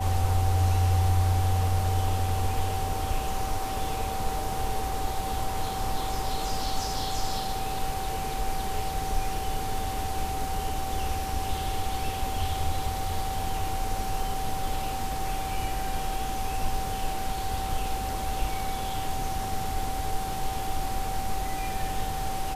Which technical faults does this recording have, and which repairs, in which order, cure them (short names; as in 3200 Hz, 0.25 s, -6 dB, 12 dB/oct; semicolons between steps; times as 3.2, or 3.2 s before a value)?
tone 770 Hz -32 dBFS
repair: notch 770 Hz, Q 30